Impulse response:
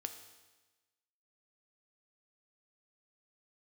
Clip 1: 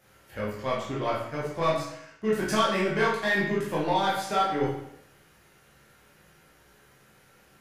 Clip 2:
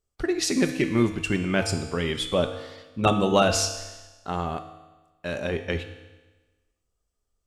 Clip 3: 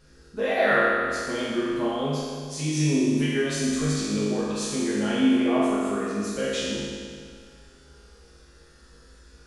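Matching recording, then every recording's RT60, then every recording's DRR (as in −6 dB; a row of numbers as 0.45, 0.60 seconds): 2; 0.75, 1.2, 2.0 seconds; −7.0, 6.5, −9.5 decibels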